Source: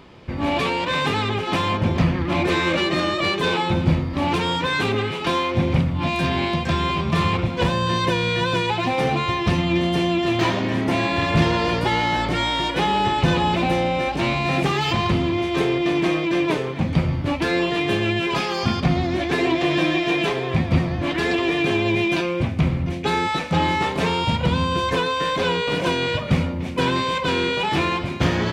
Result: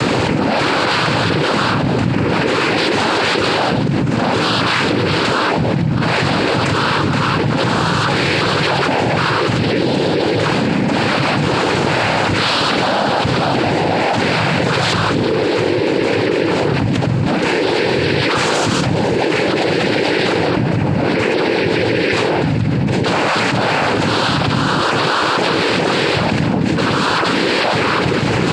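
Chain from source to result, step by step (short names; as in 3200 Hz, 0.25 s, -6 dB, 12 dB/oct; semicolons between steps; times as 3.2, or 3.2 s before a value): 20.5–21.7 high shelf 2600 Hz -7.5 dB; noise vocoder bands 8; fast leveller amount 100%; gain -3.5 dB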